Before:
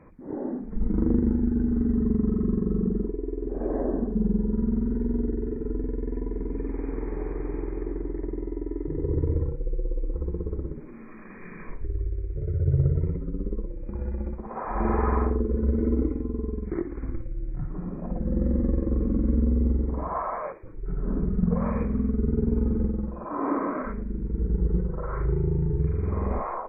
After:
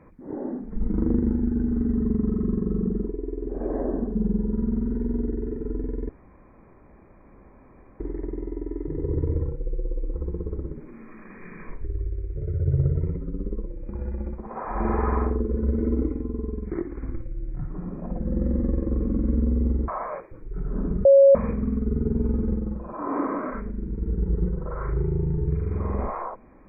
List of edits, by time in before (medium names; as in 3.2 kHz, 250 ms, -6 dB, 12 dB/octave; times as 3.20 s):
6.09–8.00 s: room tone
19.88–20.20 s: delete
21.37–21.67 s: bleep 551 Hz -9.5 dBFS